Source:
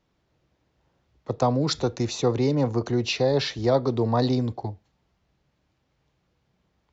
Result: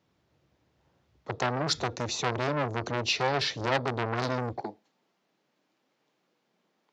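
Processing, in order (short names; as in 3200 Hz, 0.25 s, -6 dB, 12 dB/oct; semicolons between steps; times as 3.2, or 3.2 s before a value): HPF 66 Hz 24 dB/oct, from 4.61 s 220 Hz; core saturation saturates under 2100 Hz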